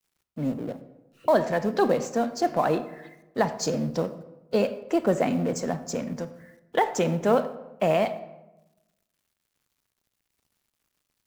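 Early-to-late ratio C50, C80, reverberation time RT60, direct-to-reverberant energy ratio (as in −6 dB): 13.0 dB, 15.0 dB, 1.0 s, 11.5 dB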